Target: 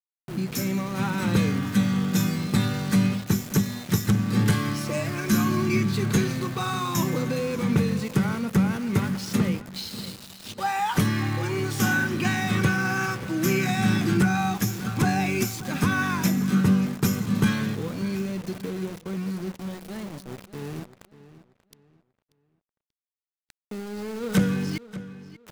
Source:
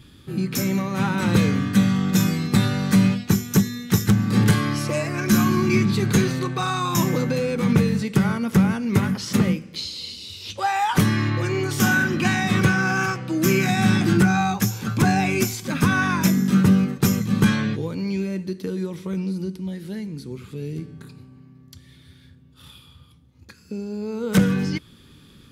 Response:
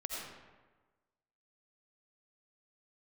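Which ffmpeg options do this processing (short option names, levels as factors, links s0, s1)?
-filter_complex "[0:a]asplit=2[s0][s1];[s1]aecho=0:1:1115|2230|3345:0.075|0.0367|0.018[s2];[s0][s2]amix=inputs=2:normalize=0,aeval=exprs='val(0)*gte(abs(val(0)),0.0266)':c=same,asplit=2[s3][s4];[s4]adelay=586,lowpass=f=4400:p=1,volume=0.168,asplit=2[s5][s6];[s6]adelay=586,lowpass=f=4400:p=1,volume=0.31,asplit=2[s7][s8];[s8]adelay=586,lowpass=f=4400:p=1,volume=0.31[s9];[s5][s7][s9]amix=inputs=3:normalize=0[s10];[s3][s10]amix=inputs=2:normalize=0,volume=0.631"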